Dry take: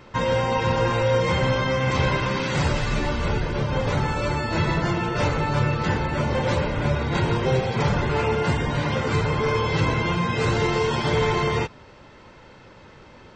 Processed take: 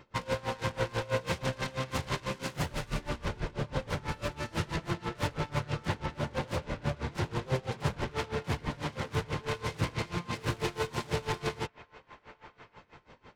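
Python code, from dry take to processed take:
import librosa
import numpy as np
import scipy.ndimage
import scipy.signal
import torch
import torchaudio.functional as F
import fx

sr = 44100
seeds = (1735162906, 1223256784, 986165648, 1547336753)

y = fx.self_delay(x, sr, depth_ms=0.4)
y = fx.echo_wet_bandpass(y, sr, ms=1124, feedback_pct=53, hz=1300.0, wet_db=-17)
y = y * 10.0 ** (-22 * (0.5 - 0.5 * np.cos(2.0 * np.pi * 6.1 * np.arange(len(y)) / sr)) / 20.0)
y = F.gain(torch.from_numpy(y), -5.5).numpy()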